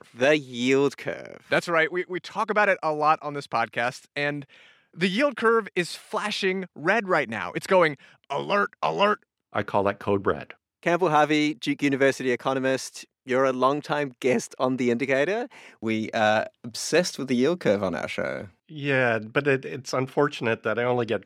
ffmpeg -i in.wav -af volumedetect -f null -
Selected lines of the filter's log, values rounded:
mean_volume: -25.1 dB
max_volume: -6.2 dB